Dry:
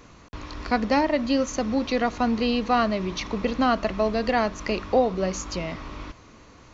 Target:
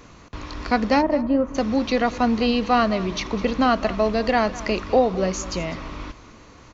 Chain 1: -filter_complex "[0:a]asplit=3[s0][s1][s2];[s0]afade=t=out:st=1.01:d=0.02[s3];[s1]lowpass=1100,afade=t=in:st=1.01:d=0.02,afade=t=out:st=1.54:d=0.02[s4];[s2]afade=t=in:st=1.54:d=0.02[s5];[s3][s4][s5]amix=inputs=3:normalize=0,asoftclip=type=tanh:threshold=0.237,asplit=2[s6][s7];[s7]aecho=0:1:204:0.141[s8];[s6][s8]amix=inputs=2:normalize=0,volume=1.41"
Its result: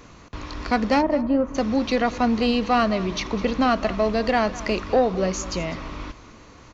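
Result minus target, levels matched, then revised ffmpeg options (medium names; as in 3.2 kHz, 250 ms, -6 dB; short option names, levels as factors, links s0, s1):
saturation: distortion +16 dB
-filter_complex "[0:a]asplit=3[s0][s1][s2];[s0]afade=t=out:st=1.01:d=0.02[s3];[s1]lowpass=1100,afade=t=in:st=1.01:d=0.02,afade=t=out:st=1.54:d=0.02[s4];[s2]afade=t=in:st=1.54:d=0.02[s5];[s3][s4][s5]amix=inputs=3:normalize=0,asoftclip=type=tanh:threshold=0.668,asplit=2[s6][s7];[s7]aecho=0:1:204:0.141[s8];[s6][s8]amix=inputs=2:normalize=0,volume=1.41"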